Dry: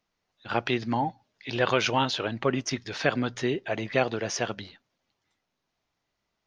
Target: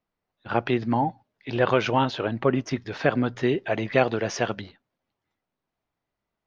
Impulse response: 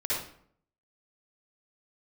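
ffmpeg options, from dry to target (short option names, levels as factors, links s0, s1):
-af "agate=range=0.501:threshold=0.00562:ratio=16:detection=peak,asetnsamples=n=441:p=0,asendcmd='3.43 lowpass f 2800;4.61 lowpass f 1500',lowpass=f=1300:p=1,volume=1.68"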